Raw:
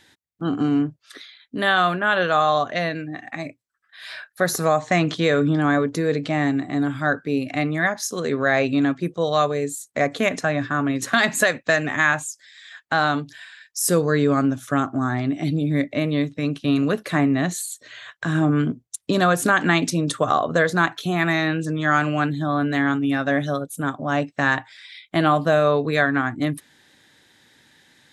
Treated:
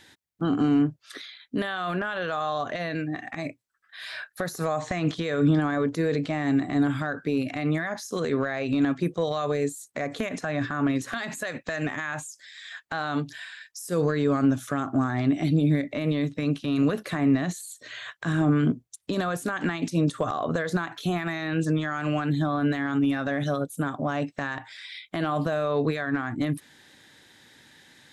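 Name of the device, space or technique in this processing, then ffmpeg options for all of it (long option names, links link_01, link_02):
de-esser from a sidechain: -filter_complex "[0:a]asplit=2[link_01][link_02];[link_02]highpass=frequency=5100:poles=1,apad=whole_len=1240422[link_03];[link_01][link_03]sidechaincompress=threshold=-39dB:ratio=5:attack=0.89:release=61,volume=1.5dB"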